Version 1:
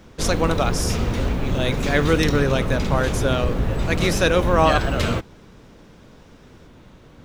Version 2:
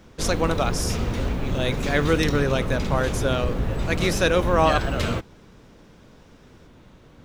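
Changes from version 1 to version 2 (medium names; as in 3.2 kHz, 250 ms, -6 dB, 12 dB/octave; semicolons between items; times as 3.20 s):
background -3.0 dB; reverb: off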